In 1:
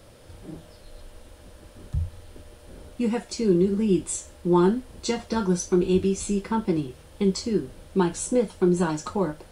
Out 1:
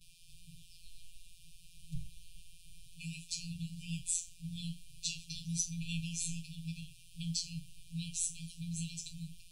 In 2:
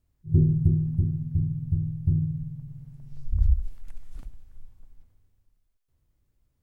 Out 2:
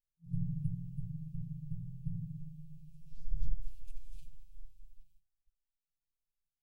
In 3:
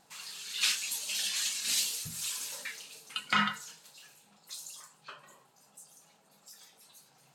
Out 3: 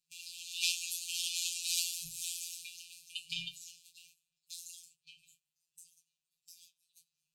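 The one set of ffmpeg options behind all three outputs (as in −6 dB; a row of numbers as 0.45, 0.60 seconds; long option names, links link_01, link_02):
-af "afftfilt=real='hypot(re,im)*cos(PI*b)':imag='0':win_size=1024:overlap=0.75,agate=range=-17dB:threshold=-59dB:ratio=16:detection=peak,afftfilt=real='re*(1-between(b*sr/4096,170,2300))':imag='im*(1-between(b*sr/4096,170,2300))':win_size=4096:overlap=0.75"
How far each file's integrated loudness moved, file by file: −15.0, −16.5, −4.5 LU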